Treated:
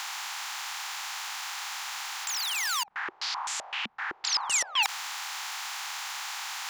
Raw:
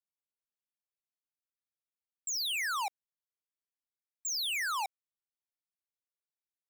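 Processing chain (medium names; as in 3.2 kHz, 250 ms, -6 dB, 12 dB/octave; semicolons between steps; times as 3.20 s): spectral levelling over time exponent 0.2; 2.83–4.83 s: step-sequenced low-pass 7.8 Hz 220–7800 Hz; trim -1 dB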